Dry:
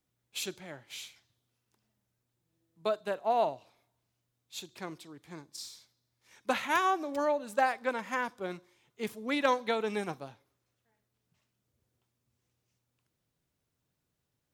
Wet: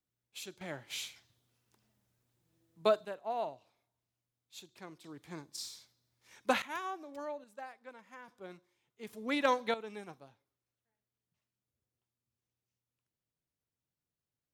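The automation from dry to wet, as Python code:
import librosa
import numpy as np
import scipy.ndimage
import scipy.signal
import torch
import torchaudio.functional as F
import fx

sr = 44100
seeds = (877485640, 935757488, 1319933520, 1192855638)

y = fx.gain(x, sr, db=fx.steps((0.0, -9.0), (0.61, 3.0), (3.05, -8.5), (5.04, 0.5), (6.62, -12.0), (7.44, -19.0), (8.28, -11.0), (9.13, -2.0), (9.74, -12.0)))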